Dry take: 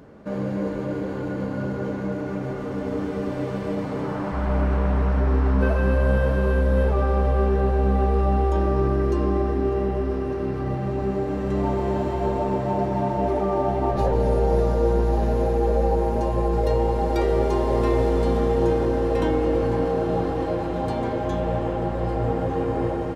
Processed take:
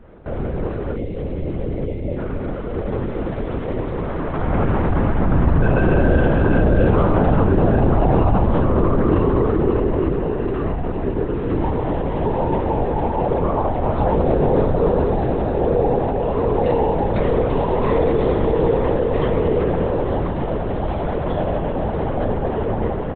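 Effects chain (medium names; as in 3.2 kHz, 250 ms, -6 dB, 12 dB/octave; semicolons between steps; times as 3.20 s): time-frequency box 0.96–2.18 s, 690–1900 Hz -22 dB; on a send: delay 902 ms -10 dB; on the sum: LPC vocoder at 8 kHz whisper; trim +3 dB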